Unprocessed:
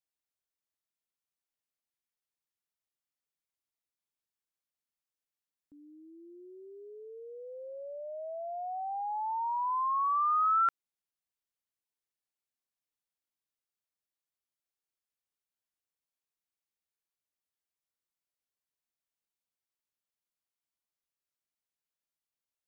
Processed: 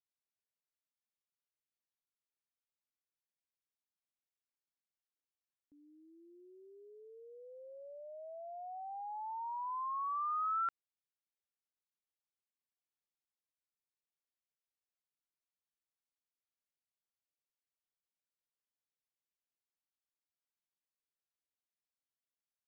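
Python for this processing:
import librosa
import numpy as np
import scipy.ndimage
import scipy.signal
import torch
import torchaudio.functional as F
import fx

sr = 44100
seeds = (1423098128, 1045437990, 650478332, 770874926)

y = scipy.signal.sosfilt(scipy.signal.butter(2, 6400.0, 'lowpass', fs=sr, output='sos'), x)
y = y * 10.0 ** (-8.5 / 20.0)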